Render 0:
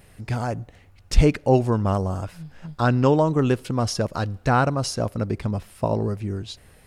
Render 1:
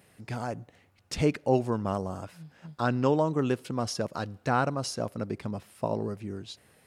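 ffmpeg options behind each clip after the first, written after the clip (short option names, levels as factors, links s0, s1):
-af "highpass=140,volume=0.501"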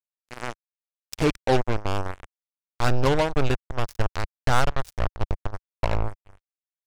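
-af "acrusher=bits=3:mix=0:aa=0.5,asubboost=boost=11:cutoff=71,volume=1.5"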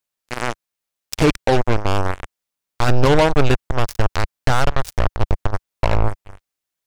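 -af "alimiter=level_in=6.68:limit=0.891:release=50:level=0:latency=1,volume=0.631"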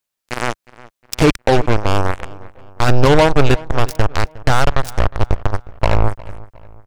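-filter_complex "[0:a]asplit=2[s0][s1];[s1]adelay=360,lowpass=f=3200:p=1,volume=0.1,asplit=2[s2][s3];[s3]adelay=360,lowpass=f=3200:p=1,volume=0.45,asplit=2[s4][s5];[s5]adelay=360,lowpass=f=3200:p=1,volume=0.45[s6];[s0][s2][s4][s6]amix=inputs=4:normalize=0,volume=1.41"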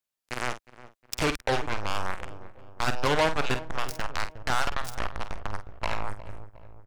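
-filter_complex "[0:a]acrossover=split=730[s0][s1];[s0]asoftclip=type=tanh:threshold=0.15[s2];[s2][s1]amix=inputs=2:normalize=0,asplit=2[s3][s4];[s4]adelay=48,volume=0.316[s5];[s3][s5]amix=inputs=2:normalize=0,volume=0.376"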